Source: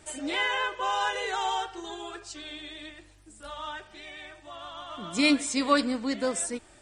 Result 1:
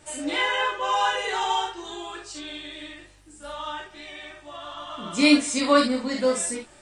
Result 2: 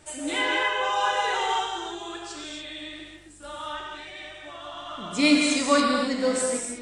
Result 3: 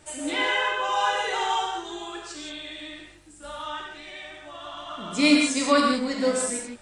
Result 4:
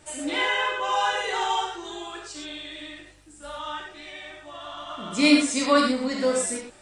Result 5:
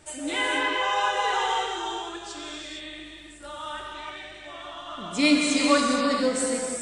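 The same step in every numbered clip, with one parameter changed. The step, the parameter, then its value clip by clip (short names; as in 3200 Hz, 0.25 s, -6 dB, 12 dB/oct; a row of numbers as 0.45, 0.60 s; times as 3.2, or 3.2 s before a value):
non-linear reverb, gate: 90, 310, 200, 140, 490 ms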